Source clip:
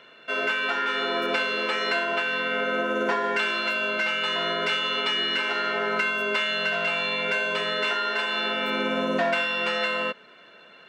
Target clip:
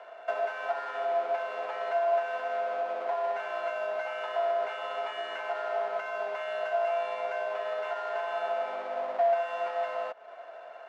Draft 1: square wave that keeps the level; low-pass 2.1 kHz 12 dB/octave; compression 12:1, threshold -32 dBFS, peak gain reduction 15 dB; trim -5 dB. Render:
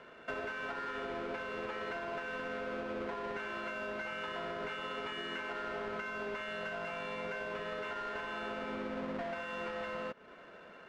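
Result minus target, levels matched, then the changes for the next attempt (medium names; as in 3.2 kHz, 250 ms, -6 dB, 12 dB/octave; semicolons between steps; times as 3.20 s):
500 Hz band -3.0 dB
add after compression: resonant high-pass 690 Hz, resonance Q 7.8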